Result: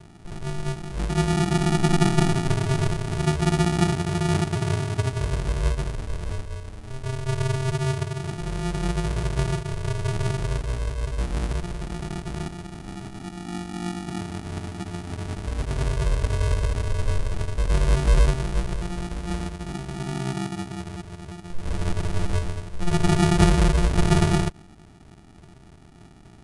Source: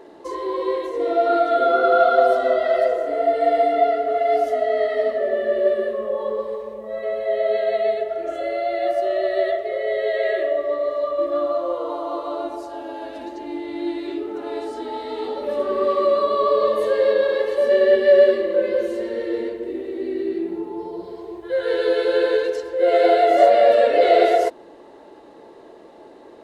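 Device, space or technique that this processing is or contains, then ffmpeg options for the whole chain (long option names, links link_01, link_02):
crushed at another speed: -af "asetrate=88200,aresample=44100,acrusher=samples=42:mix=1:aa=0.000001,asetrate=22050,aresample=44100,volume=-3.5dB"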